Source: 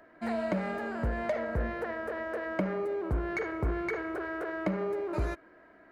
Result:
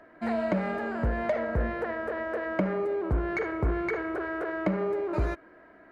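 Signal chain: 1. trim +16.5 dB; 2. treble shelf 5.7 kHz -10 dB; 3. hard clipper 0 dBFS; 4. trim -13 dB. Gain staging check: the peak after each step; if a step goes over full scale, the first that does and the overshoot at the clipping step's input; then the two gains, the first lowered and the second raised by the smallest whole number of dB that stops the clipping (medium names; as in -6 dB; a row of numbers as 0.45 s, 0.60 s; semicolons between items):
-2.0 dBFS, -2.0 dBFS, -2.0 dBFS, -15.0 dBFS; nothing clips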